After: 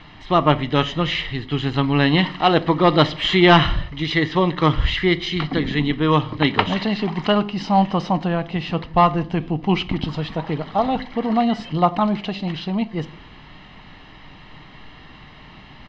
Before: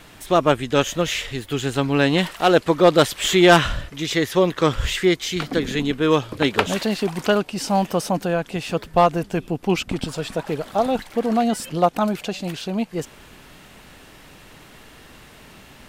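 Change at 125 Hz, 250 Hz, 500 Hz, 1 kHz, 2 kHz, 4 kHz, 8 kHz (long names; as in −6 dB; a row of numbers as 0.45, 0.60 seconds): +4.5 dB, +2.0 dB, −2.5 dB, +2.5 dB, +0.5 dB, +2.0 dB, below −15 dB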